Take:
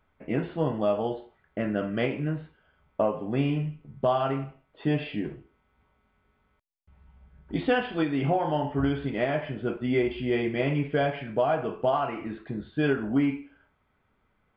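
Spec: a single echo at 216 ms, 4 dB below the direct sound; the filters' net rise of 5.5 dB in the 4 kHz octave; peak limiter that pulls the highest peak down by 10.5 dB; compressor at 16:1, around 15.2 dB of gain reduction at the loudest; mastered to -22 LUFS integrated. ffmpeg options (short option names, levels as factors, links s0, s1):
-af "equalizer=f=4000:t=o:g=8,acompressor=threshold=0.0178:ratio=16,alimiter=level_in=3.16:limit=0.0631:level=0:latency=1,volume=0.316,aecho=1:1:216:0.631,volume=10.6"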